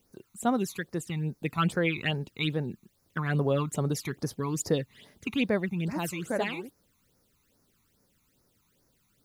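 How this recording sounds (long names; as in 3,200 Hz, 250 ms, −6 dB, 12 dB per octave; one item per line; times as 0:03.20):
a quantiser's noise floor 12 bits, dither triangular
phaser sweep stages 12, 2.4 Hz, lowest notch 510–3,200 Hz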